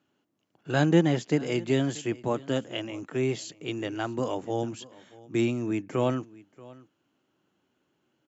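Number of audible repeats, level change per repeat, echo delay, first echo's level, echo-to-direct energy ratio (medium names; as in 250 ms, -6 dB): 1, no regular repeats, 632 ms, -21.5 dB, -21.5 dB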